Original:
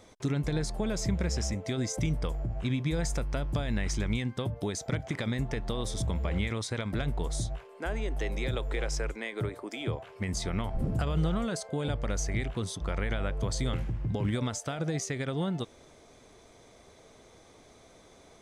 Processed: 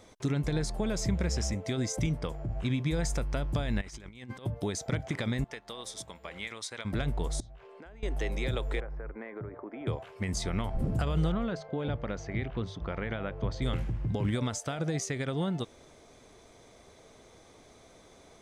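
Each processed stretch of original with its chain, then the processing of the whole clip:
2.07–2.49 s: high-pass 74 Hz + treble shelf 9.5 kHz -7.5 dB
3.81–4.46 s: bass shelf 180 Hz -8.5 dB + compressor with a negative ratio -42 dBFS, ratio -0.5
5.44–6.85 s: high-pass 930 Hz 6 dB/octave + upward expansion, over -50 dBFS
7.40–8.03 s: low-pass 5 kHz + compression 16:1, threshold -45 dBFS
8.80–9.87 s: low-pass 1.7 kHz 24 dB/octave + compression 5:1, threshold -36 dBFS
11.32–13.62 s: distance through air 230 m + hum notches 50/100/150 Hz
whole clip: none

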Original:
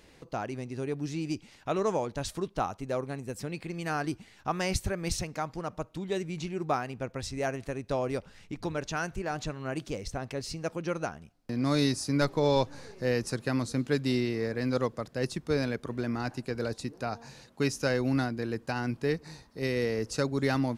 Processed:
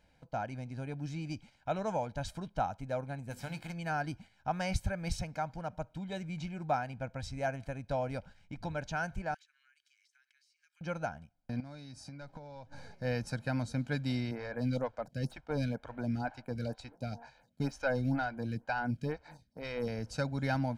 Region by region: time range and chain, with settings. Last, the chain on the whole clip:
3.30–3.72 s: formants flattened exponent 0.6 + hum notches 50/100/150/200/250/300/350/400 Hz
9.34–10.81 s: steep high-pass 1.6 kHz + compression 12:1, threshold -53 dBFS
11.60–12.77 s: low-pass 10 kHz + compression 16:1, threshold -38 dBFS
14.31–19.88 s: waveshaping leveller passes 1 + lamp-driven phase shifter 2.1 Hz
whole clip: gate -47 dBFS, range -7 dB; treble shelf 4.4 kHz -9 dB; comb 1.3 ms, depth 77%; trim -5 dB

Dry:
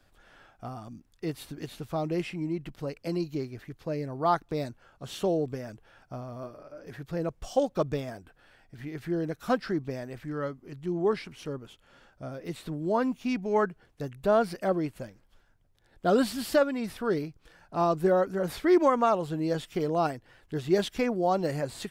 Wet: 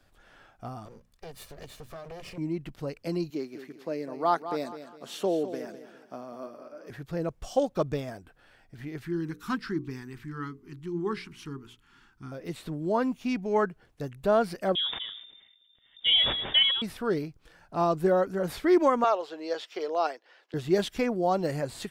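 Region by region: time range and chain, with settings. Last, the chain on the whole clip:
0.85–2.38 s: comb filter that takes the minimum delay 1.7 ms + hum notches 60/120/180/240 Hz + compression, threshold -39 dBFS
3.30–6.90 s: high-pass 210 Hz 24 dB/octave + feedback delay 204 ms, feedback 35%, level -11.5 dB + short-mantissa float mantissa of 8-bit
9.03–12.32 s: Chebyshev band-stop 350–1000 Hz + hum notches 60/120/180/240/300/360/420/480 Hz
14.75–16.82 s: band-stop 1.1 kHz, Q 6.8 + frequency inversion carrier 3.6 kHz + decay stretcher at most 62 dB/s
19.04–20.54 s: high-pass 410 Hz 24 dB/octave + resonant high shelf 7.1 kHz -11 dB, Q 1.5
whole clip: none

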